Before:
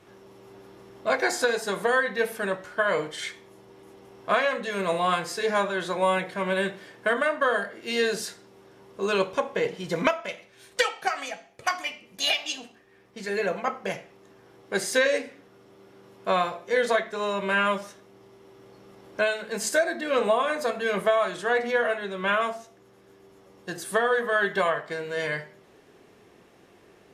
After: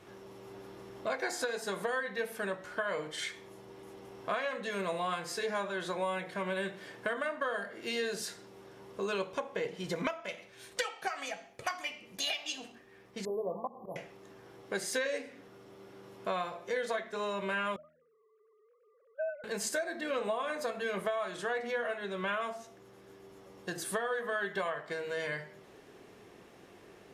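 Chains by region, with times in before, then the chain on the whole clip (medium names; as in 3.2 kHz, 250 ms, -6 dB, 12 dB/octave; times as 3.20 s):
13.25–13.96 s: brick-wall FIR band-stop 1.2–11 kHz + slow attack 146 ms + hum notches 50/100/150/200 Hz
17.76–19.44 s: formants replaced by sine waves + band-pass filter 780 Hz, Q 2.8
whole clip: de-hum 79.43 Hz, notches 4; compression 2.5:1, threshold -36 dBFS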